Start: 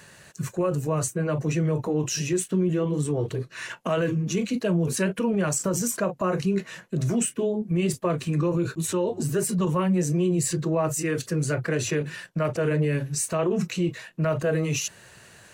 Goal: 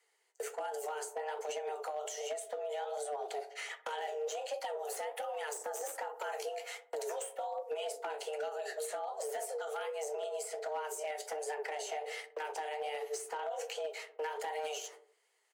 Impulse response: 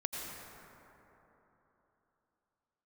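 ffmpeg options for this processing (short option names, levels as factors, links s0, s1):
-filter_complex "[0:a]agate=range=0.0562:threshold=0.0126:ratio=16:detection=peak,bass=f=250:g=-3,treble=f=4000:g=2,acompressor=threshold=0.0501:ratio=20,asettb=1/sr,asplit=3[s0][s1][s2];[s0]atrim=end=4.774[s3];[s1]atrim=start=4.77:end=7.47,asetpts=PTS-STARTPTS,afade=t=in:d=0.004:c=qsin,afade=t=out:st=2.696:d=0.004:c=qsin,highshelf=f=10000:g=10[s4];[s2]atrim=start=7.466[s5];[s3][s4]acrossfade=d=0.004:c1=hsin:c2=qsin[s6];[s6][s5]acrossfade=d=0.004:c1=qsin:c2=hsin,aeval=exprs='0.0841*(abs(mod(val(0)/0.0841+3,4)-2)-1)':c=same,asplit=2[s7][s8];[s8]adelay=62,lowpass=f=890:p=1,volume=0.251,asplit=2[s9][s10];[s10]adelay=62,lowpass=f=890:p=1,volume=0.53,asplit=2[s11][s12];[s12]adelay=62,lowpass=f=890:p=1,volume=0.53,asplit=2[s13][s14];[s14]adelay=62,lowpass=f=890:p=1,volume=0.53,asplit=2[s15][s16];[s16]adelay=62,lowpass=f=890:p=1,volume=0.53,asplit=2[s17][s18];[s18]adelay=62,lowpass=f=890:p=1,volume=0.53[s19];[s7][s9][s11][s13][s15][s17][s19]amix=inputs=7:normalize=0,acrossover=split=550|1600[s20][s21][s22];[s20]acompressor=threshold=0.0126:ratio=4[s23];[s21]acompressor=threshold=0.00501:ratio=4[s24];[s22]acompressor=threshold=0.00631:ratio=4[s25];[s23][s24][s25]amix=inputs=3:normalize=0,afreqshift=300,flanger=delay=6.3:depth=8.9:regen=59:speed=1.3:shape=sinusoidal,asoftclip=type=hard:threshold=0.02,highpass=f=190:w=0.5412,highpass=f=190:w=1.3066,volume=1.41"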